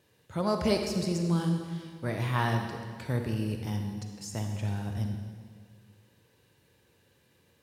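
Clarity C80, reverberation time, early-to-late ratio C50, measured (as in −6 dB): 6.0 dB, 1.7 s, 4.5 dB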